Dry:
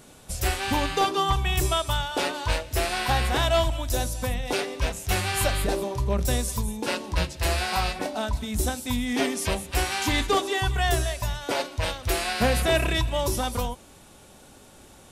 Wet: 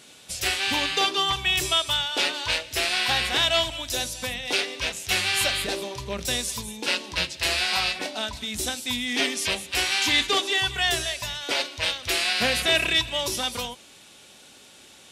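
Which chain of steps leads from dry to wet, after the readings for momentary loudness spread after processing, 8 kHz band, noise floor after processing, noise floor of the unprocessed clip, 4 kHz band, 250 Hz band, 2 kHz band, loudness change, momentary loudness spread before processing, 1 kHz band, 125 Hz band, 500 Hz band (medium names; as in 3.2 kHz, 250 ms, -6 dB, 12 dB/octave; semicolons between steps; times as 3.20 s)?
9 LU, +2.5 dB, -50 dBFS, -51 dBFS, +7.5 dB, -5.0 dB, +4.5 dB, +2.0 dB, 6 LU, -3.5 dB, -11.5 dB, -4.0 dB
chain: frequency weighting D; trim -3.5 dB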